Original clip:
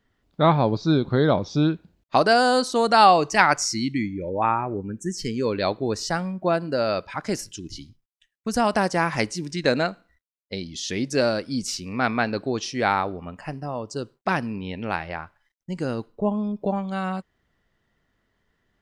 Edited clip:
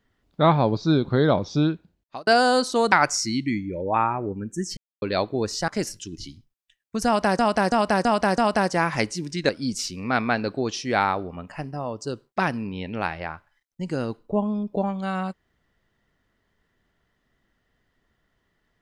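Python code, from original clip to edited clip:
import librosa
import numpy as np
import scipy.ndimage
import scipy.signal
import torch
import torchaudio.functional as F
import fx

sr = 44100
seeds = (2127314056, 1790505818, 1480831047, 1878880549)

y = fx.edit(x, sr, fx.fade_out_span(start_s=1.58, length_s=0.69),
    fx.cut(start_s=2.92, length_s=0.48),
    fx.silence(start_s=5.25, length_s=0.25),
    fx.cut(start_s=6.16, length_s=1.04),
    fx.repeat(start_s=8.58, length_s=0.33, count=5),
    fx.cut(start_s=9.69, length_s=1.69), tone=tone)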